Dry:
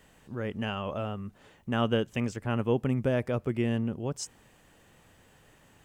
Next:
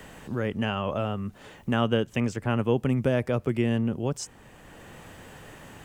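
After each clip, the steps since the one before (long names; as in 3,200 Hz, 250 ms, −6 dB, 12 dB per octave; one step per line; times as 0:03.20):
multiband upward and downward compressor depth 40%
level +3.5 dB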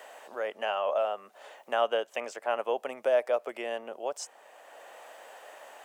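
four-pole ladder high-pass 550 Hz, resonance 55%
level +6.5 dB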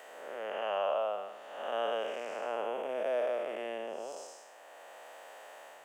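spectrum smeared in time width 332 ms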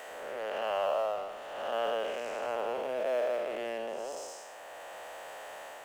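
mu-law and A-law mismatch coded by mu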